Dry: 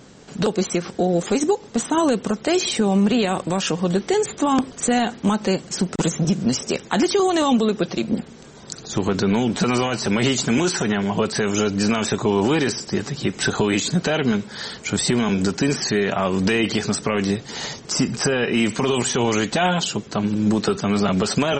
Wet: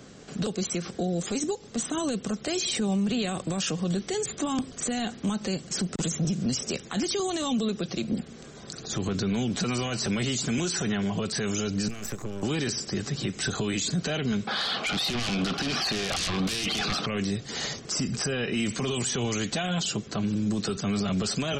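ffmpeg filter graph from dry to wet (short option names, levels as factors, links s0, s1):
-filter_complex "[0:a]asettb=1/sr,asplit=3[s0][s1][s2];[s0]atrim=end=11.884[s3];[s1]atrim=start=11.88:end=12.43,asetpts=PTS-STARTPTS,afade=t=in:d=0.004:c=qsin,afade=t=out:st=0.546:d=0.004:c=qsin,equalizer=f=3600:w=2:g=-14.5,acrossover=split=150|3000[s4][s5][s6];[s5]acompressor=threshold=0.0224:ratio=4:attack=3.2:release=140:knee=2.83:detection=peak[s7];[s4][s7][s6]amix=inputs=3:normalize=0,aeval=exprs='max(val(0),0)':c=same[s8];[s2]atrim=start=12.426[s9];[s3][s8]acrossfade=d=0.004:c1=hsin:c2=qsin[s10];[s10][s9]acrossfade=d=0.004:c1=qsin:c2=hsin,asettb=1/sr,asplit=3[s11][s12][s13];[s11]atrim=end=14.474[s14];[s12]atrim=start=14.47:end=17.06,asetpts=PTS-STARTPTS,afade=t=in:d=0.004:c=qsin,afade=t=out:st=2.586:d=0.004:c=qsin,highpass=400,equalizer=f=410:t=q:w=4:g=-6,equalizer=f=770:t=q:w=4:g=9,equalizer=f=1200:t=q:w=4:g=8,equalizer=f=1900:t=q:w=4:g=-7,lowpass=f=3500:w=0.5412,lowpass=f=3500:w=1.3066,aeval=exprs='0.501*sin(PI/2*7.08*val(0)/0.501)':c=same[s15];[s13]atrim=start=17.056[s16];[s14][s15]acrossfade=d=0.004:c1=hsin:c2=qsin[s17];[s17][s16]acrossfade=d=0.004:c1=qsin:c2=hsin,acrossover=split=190|3000[s18][s19][s20];[s19]acompressor=threshold=0.0316:ratio=2.5[s21];[s18][s21][s20]amix=inputs=3:normalize=0,alimiter=limit=0.126:level=0:latency=1:release=11,bandreject=f=910:w=6.9,volume=0.794"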